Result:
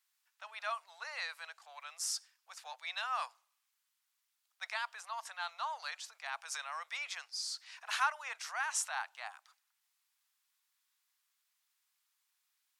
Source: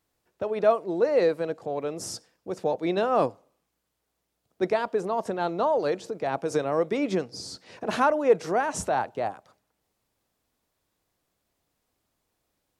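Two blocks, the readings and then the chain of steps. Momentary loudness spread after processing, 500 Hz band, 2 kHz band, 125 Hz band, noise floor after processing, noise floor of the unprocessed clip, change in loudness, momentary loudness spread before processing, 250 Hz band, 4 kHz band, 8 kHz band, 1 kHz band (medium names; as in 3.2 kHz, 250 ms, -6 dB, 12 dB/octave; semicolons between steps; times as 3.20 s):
14 LU, -31.0 dB, -3.0 dB, under -40 dB, -83 dBFS, -79 dBFS, -12.5 dB, 12 LU, under -40 dB, -0.5 dB, 0.0 dB, -11.5 dB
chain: Bessel high-pass 1.7 kHz, order 8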